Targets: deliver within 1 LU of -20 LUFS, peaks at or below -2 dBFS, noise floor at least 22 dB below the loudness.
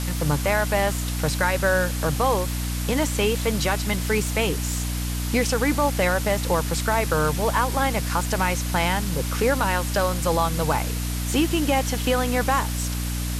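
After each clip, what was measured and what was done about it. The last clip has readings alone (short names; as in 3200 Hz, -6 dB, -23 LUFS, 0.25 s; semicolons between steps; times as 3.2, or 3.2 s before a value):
hum 60 Hz; harmonics up to 300 Hz; hum level -25 dBFS; noise floor -27 dBFS; noise floor target -45 dBFS; loudness -23.0 LUFS; peak -8.0 dBFS; loudness target -20.0 LUFS
-> notches 60/120/180/240/300 Hz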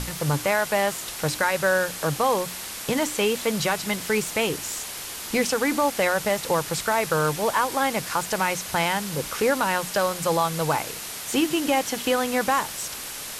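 hum none; noise floor -35 dBFS; noise floor target -46 dBFS
-> noise print and reduce 11 dB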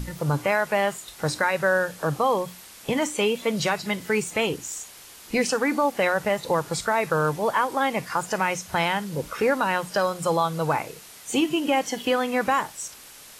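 noise floor -46 dBFS; noise floor target -47 dBFS
-> noise print and reduce 6 dB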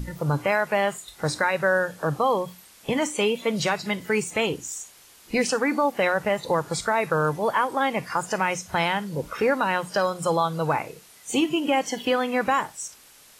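noise floor -52 dBFS; loudness -24.5 LUFS; peak -10.0 dBFS; loudness target -20.0 LUFS
-> gain +4.5 dB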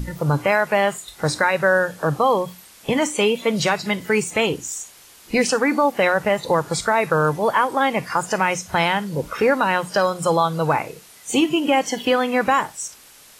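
loudness -20.0 LUFS; peak -5.5 dBFS; noise floor -47 dBFS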